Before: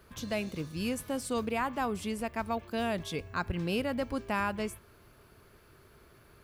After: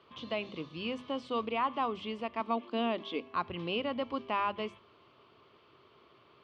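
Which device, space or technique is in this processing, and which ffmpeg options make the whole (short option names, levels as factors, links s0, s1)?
kitchen radio: -filter_complex "[0:a]highpass=170,equalizer=f=190:t=q:w=4:g=-5,equalizer=f=1100:t=q:w=4:g=8,equalizer=f=1600:t=q:w=4:g=-10,equalizer=f=3100:t=q:w=4:g=9,lowpass=f=4200:w=0.5412,lowpass=f=4200:w=1.3066,bandreject=f=50:t=h:w=6,bandreject=f=100:t=h:w=6,bandreject=f=150:t=h:w=6,bandreject=f=200:t=h:w=6,bandreject=f=250:t=h:w=6,acrossover=split=3600[s0][s1];[s1]acompressor=threshold=0.00251:ratio=4:attack=1:release=60[s2];[s0][s2]amix=inputs=2:normalize=0,asettb=1/sr,asplit=3[s3][s4][s5];[s3]atrim=end=2.404[s6];[s4]atrim=start=2.4:end=3.35,asetpts=PTS-STARTPTS,afade=t=in:d=0.004:c=qsin,afade=t=out:st=0.946:d=0.004:c=qsin,lowshelf=f=180:t=q:w=3:g=-10[s7];[s5]atrim=start=3.346[s8];[s6][s7]acrossfade=d=0.004:c1=hsin:c2=qsin[s9];[s9][s8]acrossfade=d=0.004:c1=qsin:c2=hsin,volume=0.841"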